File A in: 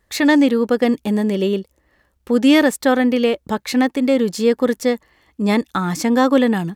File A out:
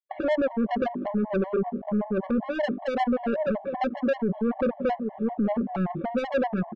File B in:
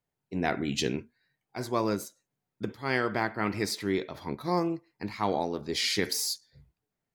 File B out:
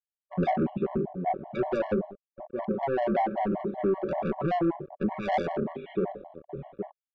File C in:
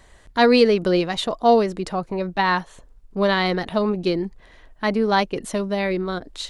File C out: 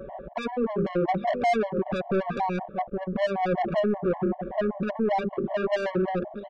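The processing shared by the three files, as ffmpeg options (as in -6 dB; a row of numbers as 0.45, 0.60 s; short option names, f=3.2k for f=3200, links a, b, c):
-filter_complex "[0:a]highpass=40,lowshelf=f=120:t=q:w=1.5:g=-6,bandreject=f=50:t=h:w=6,bandreject=f=100:t=h:w=6,bandreject=f=150:t=h:w=6,bandreject=f=200:t=h:w=6,bandreject=f=250:t=h:w=6,bandreject=f=300:t=h:w=6,bandreject=f=350:t=h:w=6,bandreject=f=400:t=h:w=6,aecho=1:1:5.3:0.74,asplit=2[a][b];[b]adelay=816.3,volume=-22dB,highshelf=f=4k:g=-18.4[c];[a][c]amix=inputs=2:normalize=0,acompressor=threshold=-32dB:ratio=4,alimiter=level_in=6dB:limit=-24dB:level=0:latency=1:release=69,volume=-6dB,aresample=8000,aeval=exprs='val(0)*gte(abs(val(0)),0.00188)':c=same,aresample=44100,lowpass=f=680:t=q:w=4.9,acontrast=84,asoftclip=type=tanh:threshold=-28dB,afftfilt=real='re*gt(sin(2*PI*5.2*pts/sr)*(1-2*mod(floor(b*sr/1024/560),2)),0)':imag='im*gt(sin(2*PI*5.2*pts/sr)*(1-2*mod(floor(b*sr/1024/560),2)),0)':win_size=1024:overlap=0.75,volume=8.5dB"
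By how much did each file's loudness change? -10.0, +1.0, -6.5 LU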